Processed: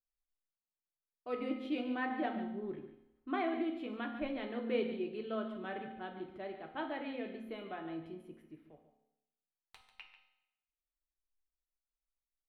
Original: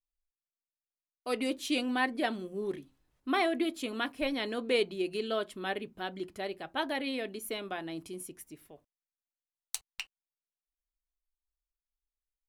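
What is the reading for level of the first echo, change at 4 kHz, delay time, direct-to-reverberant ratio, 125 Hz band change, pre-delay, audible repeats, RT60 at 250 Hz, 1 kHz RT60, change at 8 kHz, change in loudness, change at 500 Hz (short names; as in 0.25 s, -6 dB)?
-12.0 dB, -14.0 dB, 0.143 s, 3.0 dB, -4.0 dB, 4 ms, 1, 0.90 s, 0.85 s, under -30 dB, -5.5 dB, -6.0 dB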